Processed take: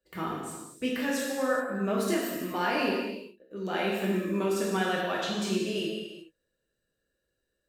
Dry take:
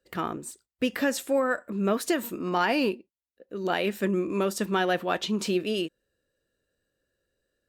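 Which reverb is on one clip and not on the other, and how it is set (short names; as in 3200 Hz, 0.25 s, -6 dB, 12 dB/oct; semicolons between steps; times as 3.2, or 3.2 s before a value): non-linear reverb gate 0.45 s falling, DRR -5 dB; gain -8 dB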